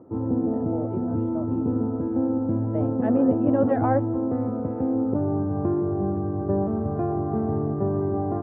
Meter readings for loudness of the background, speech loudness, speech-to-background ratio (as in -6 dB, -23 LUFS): -25.5 LUFS, -27.5 LUFS, -2.0 dB